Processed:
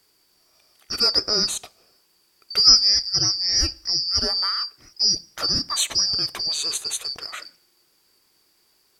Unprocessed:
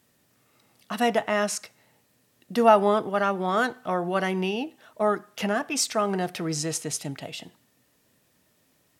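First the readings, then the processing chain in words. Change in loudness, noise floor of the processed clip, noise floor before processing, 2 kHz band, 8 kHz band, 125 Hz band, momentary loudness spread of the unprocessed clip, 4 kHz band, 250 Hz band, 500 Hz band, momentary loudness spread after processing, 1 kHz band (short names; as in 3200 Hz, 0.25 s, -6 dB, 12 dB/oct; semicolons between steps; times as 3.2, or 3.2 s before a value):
+6.5 dB, -64 dBFS, -67 dBFS, -6.5 dB, +7.5 dB, -3.5 dB, 13 LU, +18.5 dB, -10.5 dB, -13.0 dB, 16 LU, -11.0 dB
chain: four-band scrambler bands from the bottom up 2341; gain +3 dB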